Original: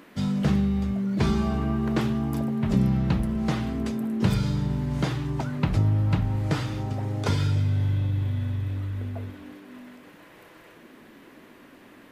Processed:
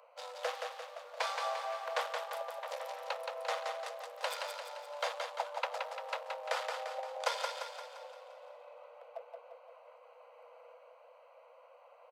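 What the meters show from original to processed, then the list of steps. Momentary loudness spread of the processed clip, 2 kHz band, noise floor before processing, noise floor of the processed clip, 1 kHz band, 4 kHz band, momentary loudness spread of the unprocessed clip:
20 LU, −2.5 dB, −51 dBFS, −60 dBFS, −0.5 dB, −3.0 dB, 8 LU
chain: adaptive Wiener filter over 25 samples
Chebyshev high-pass filter 480 Hz, order 10
on a send: repeating echo 173 ms, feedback 52%, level −4.5 dB

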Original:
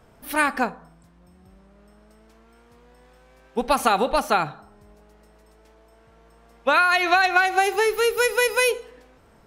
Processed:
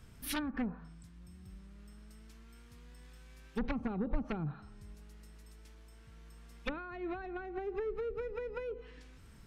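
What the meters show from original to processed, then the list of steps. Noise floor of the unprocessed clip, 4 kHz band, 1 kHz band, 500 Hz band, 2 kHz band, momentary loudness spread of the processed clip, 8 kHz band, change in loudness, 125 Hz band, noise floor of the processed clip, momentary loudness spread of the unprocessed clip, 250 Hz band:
−55 dBFS, −21.5 dB, −25.5 dB, −16.5 dB, −25.5 dB, 20 LU, below −15 dB, −18.5 dB, −0.5 dB, −56 dBFS, 11 LU, −6.5 dB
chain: treble cut that deepens with the level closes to 410 Hz, closed at −17.5 dBFS
sine wavefolder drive 8 dB, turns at −8.5 dBFS
guitar amp tone stack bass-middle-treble 6-0-2
level +3.5 dB

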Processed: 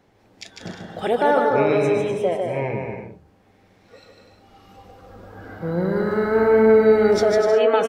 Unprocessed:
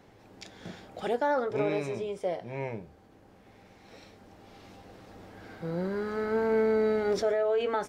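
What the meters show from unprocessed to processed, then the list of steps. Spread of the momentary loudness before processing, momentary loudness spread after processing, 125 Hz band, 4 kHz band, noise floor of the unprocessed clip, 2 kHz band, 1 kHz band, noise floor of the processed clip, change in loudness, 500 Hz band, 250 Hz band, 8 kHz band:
20 LU, 19 LU, +11.0 dB, +9.5 dB, −57 dBFS, +10.5 dB, +10.5 dB, −57 dBFS, +11.0 dB, +11.0 dB, +11.0 dB, can't be measured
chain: noise reduction from a noise print of the clip's start 11 dB
bouncing-ball delay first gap 150 ms, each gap 0.65×, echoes 5
level +8.5 dB

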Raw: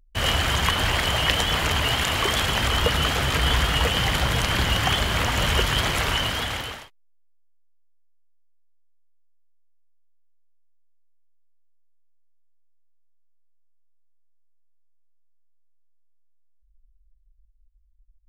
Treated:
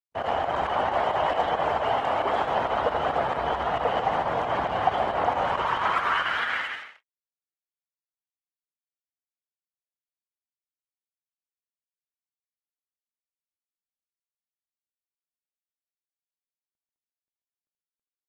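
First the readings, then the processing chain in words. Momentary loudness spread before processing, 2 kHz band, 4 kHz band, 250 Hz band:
3 LU, −5.5 dB, −15.0 dB, −7.0 dB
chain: noise gate with hold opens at −51 dBFS
high-shelf EQ 2,100 Hz −9.5 dB
leveller curve on the samples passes 3
band-pass filter sweep 740 Hz → 2,000 Hz, 0:05.28–0:06.77
fake sidechain pumping 135 BPM, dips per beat 2, −16 dB, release 79 ms
loudspeakers that aren't time-aligned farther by 27 metres −9 dB, 47 metres −11 dB
Opus 16 kbit/s 48,000 Hz

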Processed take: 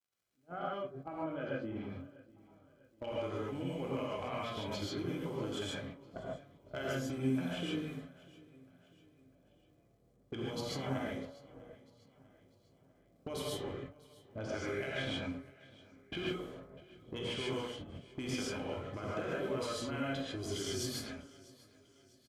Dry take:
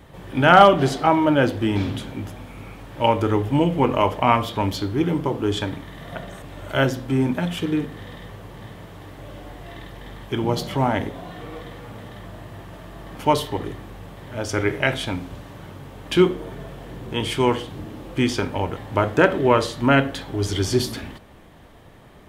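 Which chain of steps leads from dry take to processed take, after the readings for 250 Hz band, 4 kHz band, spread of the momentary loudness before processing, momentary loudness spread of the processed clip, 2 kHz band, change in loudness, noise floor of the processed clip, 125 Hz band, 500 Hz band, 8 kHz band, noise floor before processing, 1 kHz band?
−17.0 dB, −13.5 dB, 21 LU, 17 LU, −18.5 dB, −18.5 dB, −69 dBFS, −18.0 dB, −17.5 dB, −11.0 dB, −46 dBFS, −24.0 dB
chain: fade in at the beginning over 5.15 s
noise gate −31 dBFS, range −29 dB
brickwall limiter −12 dBFS, peak gain reduction 10 dB
low-pass that shuts in the quiet parts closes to 490 Hz, open at −18.5 dBFS
high-shelf EQ 4,500 Hz +7.5 dB
hum removal 141.1 Hz, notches 12
downward compressor 5 to 1, threshold −39 dBFS, peak gain reduction 20 dB
surface crackle 85 per second −65 dBFS
notch comb filter 920 Hz
gain into a clipping stage and back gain 30.5 dB
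repeating echo 647 ms, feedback 48%, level −21.5 dB
reverb whose tail is shaped and stops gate 170 ms rising, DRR −5 dB
level −2.5 dB

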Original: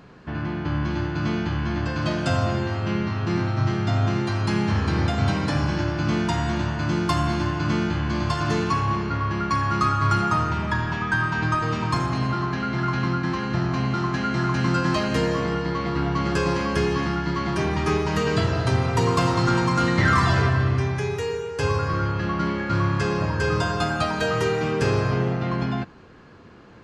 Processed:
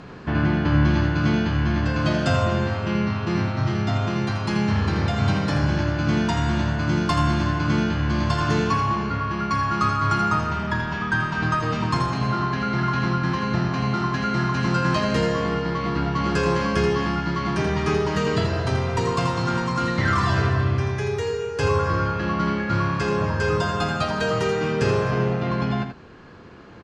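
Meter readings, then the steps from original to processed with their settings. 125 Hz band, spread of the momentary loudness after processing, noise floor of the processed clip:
+0.5 dB, 3 LU, −29 dBFS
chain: speech leveller 2 s
low-pass filter 8,200 Hz 12 dB per octave
single-tap delay 82 ms −7.5 dB

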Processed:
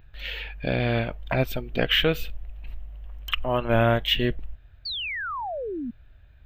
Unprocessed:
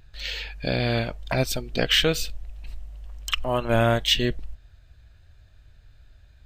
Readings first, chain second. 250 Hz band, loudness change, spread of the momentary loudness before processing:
+0.5 dB, −1.5 dB, 22 LU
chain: flat-topped bell 6,900 Hz −16 dB
sound drawn into the spectrogram fall, 0:04.85–0:05.91, 220–4,700 Hz −31 dBFS

